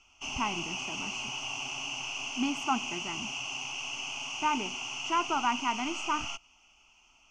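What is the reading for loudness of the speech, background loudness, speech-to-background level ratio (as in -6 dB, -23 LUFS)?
-33.0 LUFS, -35.0 LUFS, 2.0 dB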